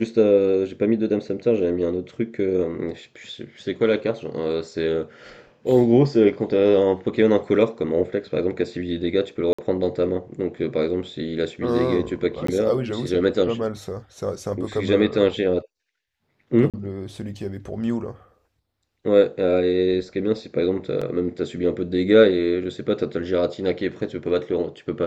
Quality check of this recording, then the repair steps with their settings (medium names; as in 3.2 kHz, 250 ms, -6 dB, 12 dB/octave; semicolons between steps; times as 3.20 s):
9.53–9.59 s: dropout 55 ms
12.47–12.48 s: dropout 14 ms
16.70–16.74 s: dropout 37 ms
21.01–21.02 s: dropout 5.4 ms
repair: interpolate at 9.53 s, 55 ms; interpolate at 12.47 s, 14 ms; interpolate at 16.70 s, 37 ms; interpolate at 21.01 s, 5.4 ms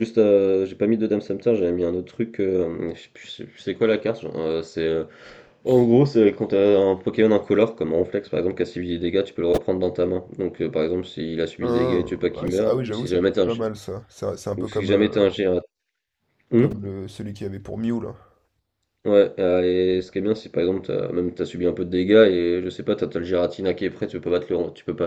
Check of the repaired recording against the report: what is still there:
nothing left